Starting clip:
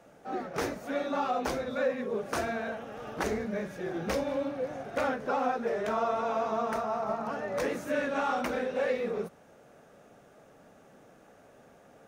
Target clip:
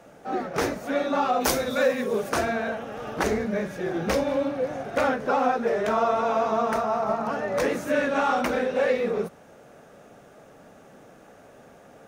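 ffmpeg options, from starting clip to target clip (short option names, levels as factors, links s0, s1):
-filter_complex "[0:a]asplit=3[s0][s1][s2];[s0]afade=t=out:st=1.4:d=0.02[s3];[s1]aemphasis=mode=production:type=75kf,afade=t=in:st=1.4:d=0.02,afade=t=out:st=2.28:d=0.02[s4];[s2]afade=t=in:st=2.28:d=0.02[s5];[s3][s4][s5]amix=inputs=3:normalize=0,volume=2.11"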